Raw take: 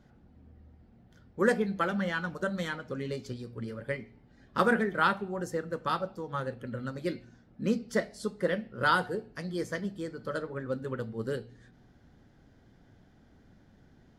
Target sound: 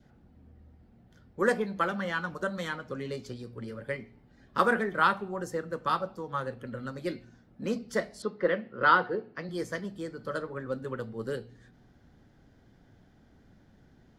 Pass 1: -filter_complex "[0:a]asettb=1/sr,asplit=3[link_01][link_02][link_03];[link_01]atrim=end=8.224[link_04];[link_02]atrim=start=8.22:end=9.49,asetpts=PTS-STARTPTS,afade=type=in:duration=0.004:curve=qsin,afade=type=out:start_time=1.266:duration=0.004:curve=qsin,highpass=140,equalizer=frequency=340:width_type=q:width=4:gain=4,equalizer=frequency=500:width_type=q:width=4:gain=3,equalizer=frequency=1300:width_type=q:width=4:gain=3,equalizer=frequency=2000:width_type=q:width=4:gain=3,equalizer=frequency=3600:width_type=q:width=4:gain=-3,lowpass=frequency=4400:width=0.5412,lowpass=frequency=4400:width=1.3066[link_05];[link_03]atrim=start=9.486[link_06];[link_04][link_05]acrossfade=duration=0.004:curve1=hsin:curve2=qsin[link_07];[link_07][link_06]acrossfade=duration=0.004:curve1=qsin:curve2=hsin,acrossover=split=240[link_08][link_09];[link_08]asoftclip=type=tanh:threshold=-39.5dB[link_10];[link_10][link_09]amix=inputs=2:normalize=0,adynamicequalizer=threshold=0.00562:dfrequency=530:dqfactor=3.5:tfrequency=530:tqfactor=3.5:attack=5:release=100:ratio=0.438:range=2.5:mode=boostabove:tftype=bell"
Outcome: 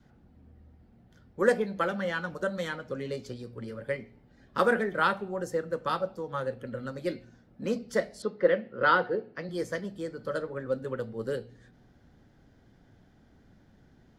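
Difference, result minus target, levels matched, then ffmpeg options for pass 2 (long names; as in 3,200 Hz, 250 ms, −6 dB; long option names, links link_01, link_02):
500 Hz band +2.5 dB
-filter_complex "[0:a]asettb=1/sr,asplit=3[link_01][link_02][link_03];[link_01]atrim=end=8.224[link_04];[link_02]atrim=start=8.22:end=9.49,asetpts=PTS-STARTPTS,afade=type=in:duration=0.004:curve=qsin,afade=type=out:start_time=1.266:duration=0.004:curve=qsin,highpass=140,equalizer=frequency=340:width_type=q:width=4:gain=4,equalizer=frequency=500:width_type=q:width=4:gain=3,equalizer=frequency=1300:width_type=q:width=4:gain=3,equalizer=frequency=2000:width_type=q:width=4:gain=3,equalizer=frequency=3600:width_type=q:width=4:gain=-3,lowpass=frequency=4400:width=0.5412,lowpass=frequency=4400:width=1.3066[link_05];[link_03]atrim=start=9.486[link_06];[link_04][link_05]acrossfade=duration=0.004:curve1=hsin:curve2=qsin[link_07];[link_07][link_06]acrossfade=duration=0.004:curve1=qsin:curve2=hsin,acrossover=split=240[link_08][link_09];[link_08]asoftclip=type=tanh:threshold=-39.5dB[link_10];[link_10][link_09]amix=inputs=2:normalize=0,adynamicequalizer=threshold=0.00562:dfrequency=1100:dqfactor=3.5:tfrequency=1100:tqfactor=3.5:attack=5:release=100:ratio=0.438:range=2.5:mode=boostabove:tftype=bell"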